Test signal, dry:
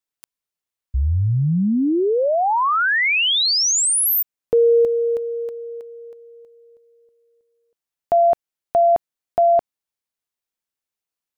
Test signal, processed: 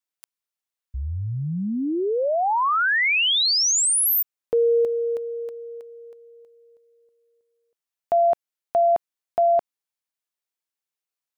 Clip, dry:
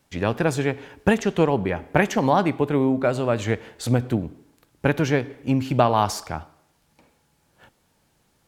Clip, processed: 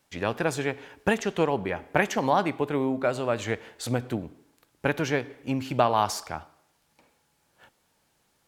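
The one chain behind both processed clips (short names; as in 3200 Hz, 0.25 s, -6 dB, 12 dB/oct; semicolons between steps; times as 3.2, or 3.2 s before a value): low shelf 320 Hz -8 dB; gain -2 dB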